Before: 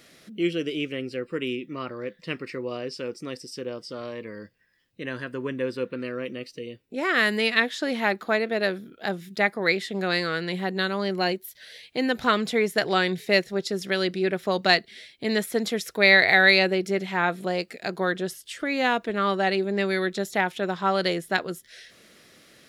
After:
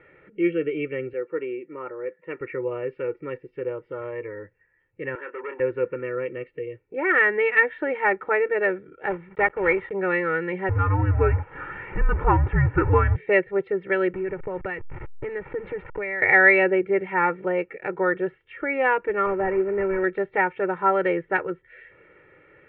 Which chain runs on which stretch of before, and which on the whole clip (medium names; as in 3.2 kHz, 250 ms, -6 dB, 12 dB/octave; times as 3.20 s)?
1.13–2.41 s: Bessel high-pass 340 Hz + treble shelf 2.1 kHz -12 dB
5.15–5.60 s: high-pass 340 Hz 24 dB/octave + doubling 28 ms -9 dB + transformer saturation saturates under 2.2 kHz
9.10–9.93 s: block-companded coder 3-bit + treble shelf 2.9 kHz -6 dB
10.69–13.16 s: jump at every zero crossing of -26 dBFS + low-pass 1.7 kHz + frequency shift -290 Hz
14.13–16.22 s: send-on-delta sampling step -34.5 dBFS + tone controls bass +6 dB, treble -6 dB + compression 8:1, threshold -27 dBFS
19.26–20.04 s: CVSD coder 16 kbps + low-pass 1.4 kHz 6 dB/octave + band-stop 840 Hz, Q 10
whole clip: steep low-pass 2.4 kHz 48 dB/octave; comb 2.2 ms, depth 95%